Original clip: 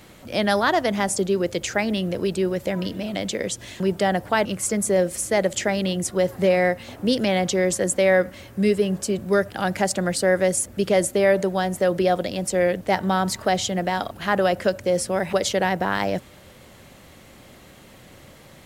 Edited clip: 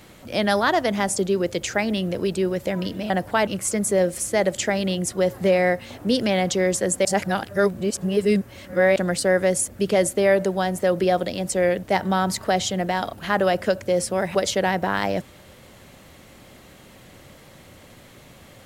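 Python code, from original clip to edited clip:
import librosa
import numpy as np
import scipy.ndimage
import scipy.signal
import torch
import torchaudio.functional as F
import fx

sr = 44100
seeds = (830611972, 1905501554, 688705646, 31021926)

y = fx.edit(x, sr, fx.cut(start_s=3.1, length_s=0.98),
    fx.reverse_span(start_s=8.03, length_s=1.91), tone=tone)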